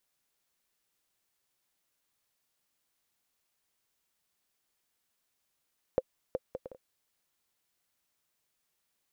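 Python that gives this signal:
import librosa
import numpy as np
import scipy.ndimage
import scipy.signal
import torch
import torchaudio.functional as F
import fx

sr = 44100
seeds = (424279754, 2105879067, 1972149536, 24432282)

y = fx.bouncing_ball(sr, first_gap_s=0.37, ratio=0.54, hz=518.0, decay_ms=41.0, level_db=-14.5)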